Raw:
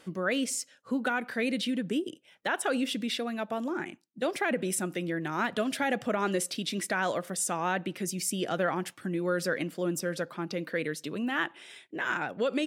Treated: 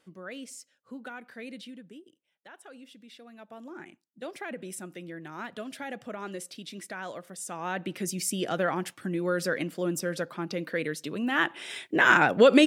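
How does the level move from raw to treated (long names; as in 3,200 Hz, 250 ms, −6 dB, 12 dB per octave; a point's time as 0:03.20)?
0:01.58 −12 dB
0:02.07 −20 dB
0:03.03 −20 dB
0:03.84 −9 dB
0:07.38 −9 dB
0:07.94 +1 dB
0:11.19 +1 dB
0:11.82 +11.5 dB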